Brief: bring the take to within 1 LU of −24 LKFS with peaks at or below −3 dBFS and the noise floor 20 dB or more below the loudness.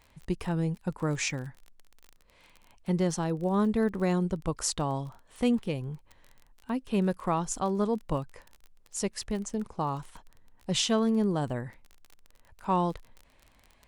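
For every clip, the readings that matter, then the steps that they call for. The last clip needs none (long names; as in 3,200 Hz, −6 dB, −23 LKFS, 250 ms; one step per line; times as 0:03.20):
crackle rate 26 per second; integrated loudness −30.0 LKFS; sample peak −14.0 dBFS; target loudness −24.0 LKFS
→ click removal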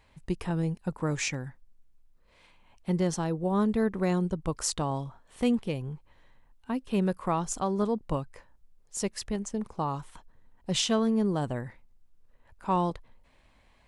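crackle rate 0 per second; integrated loudness −30.0 LKFS; sample peak −14.0 dBFS; target loudness −24.0 LKFS
→ level +6 dB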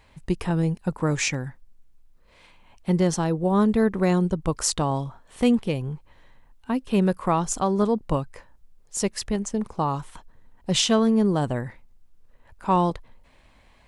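integrated loudness −24.0 LKFS; sample peak −8.0 dBFS; background noise floor −56 dBFS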